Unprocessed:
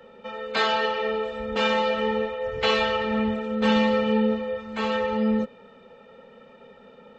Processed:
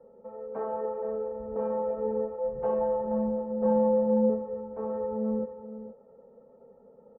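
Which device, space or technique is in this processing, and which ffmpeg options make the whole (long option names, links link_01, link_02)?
under water: -filter_complex "[0:a]lowpass=frequency=940:width=0.5412,lowpass=frequency=940:width=1.3066,equalizer=frequency=480:width_type=o:width=0.59:gain=4.5,highshelf=frequency=4000:gain=-10,asettb=1/sr,asplit=3[link_01][link_02][link_03];[link_01]atrim=end=2.384[link_04];[link_02]atrim=start=2.38:end=4.3,asetpts=PTS-STARTPTS,afade=type=in:duration=0.004:curve=qsin,afade=type=out:start_time=1.916:duration=0.004:curve=qsin,aecho=1:1:5.7:0.83,atrim=end_sample=84672[link_05];[link_03]atrim=start=4.296[link_06];[link_04][link_05]acrossfade=duration=0.004:curve1=hsin:curve2=qsin[link_07];[link_07][link_06]acrossfade=duration=0.004:curve1=qsin:curve2=hsin,aecho=1:1:470:0.251,volume=-8dB"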